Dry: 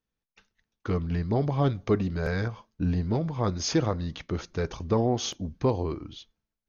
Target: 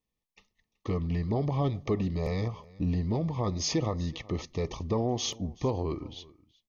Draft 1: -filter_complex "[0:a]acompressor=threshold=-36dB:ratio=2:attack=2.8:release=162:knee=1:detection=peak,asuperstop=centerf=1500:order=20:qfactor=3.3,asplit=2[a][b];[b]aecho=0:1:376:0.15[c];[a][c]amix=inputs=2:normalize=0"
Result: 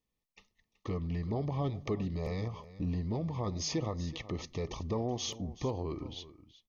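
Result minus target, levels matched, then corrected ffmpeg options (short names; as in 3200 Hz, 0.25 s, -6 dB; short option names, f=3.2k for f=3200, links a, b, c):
compressor: peak gain reduction +5 dB; echo-to-direct +6 dB
-filter_complex "[0:a]acompressor=threshold=-25.5dB:ratio=2:attack=2.8:release=162:knee=1:detection=peak,asuperstop=centerf=1500:order=20:qfactor=3.3,asplit=2[a][b];[b]aecho=0:1:376:0.075[c];[a][c]amix=inputs=2:normalize=0"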